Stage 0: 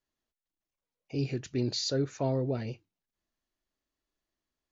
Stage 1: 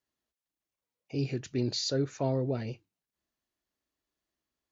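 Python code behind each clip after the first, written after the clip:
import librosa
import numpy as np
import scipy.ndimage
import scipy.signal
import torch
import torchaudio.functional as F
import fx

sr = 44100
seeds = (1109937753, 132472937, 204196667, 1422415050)

y = scipy.signal.sosfilt(scipy.signal.butter(2, 53.0, 'highpass', fs=sr, output='sos'), x)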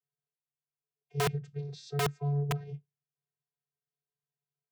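y = fx.vocoder(x, sr, bands=16, carrier='square', carrier_hz=143.0)
y = (np.mod(10.0 ** (23.5 / 20.0) * y + 1.0, 2.0) - 1.0) / 10.0 ** (23.5 / 20.0)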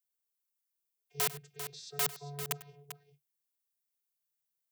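y = fx.riaa(x, sr, side='recording')
y = fx.echo_multitap(y, sr, ms=(98, 395), db=(-17.5, -10.5))
y = y * 10.0 ** (-5.5 / 20.0)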